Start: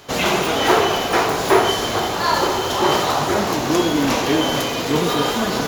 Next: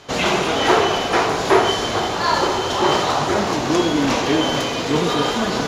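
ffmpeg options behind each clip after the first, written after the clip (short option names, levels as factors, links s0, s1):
-af "lowpass=7700"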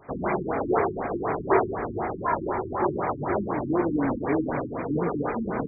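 -af "afftfilt=real='re*lt(b*sr/1024,360*pow(2500/360,0.5+0.5*sin(2*PI*4*pts/sr)))':imag='im*lt(b*sr/1024,360*pow(2500/360,0.5+0.5*sin(2*PI*4*pts/sr)))':win_size=1024:overlap=0.75,volume=0.501"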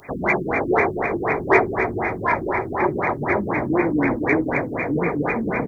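-af "aexciter=amount=4.9:drive=8.7:freq=2000,aecho=1:1:266|532|798|1064|1330:0.316|0.155|0.0759|0.0372|0.0182,volume=1.58"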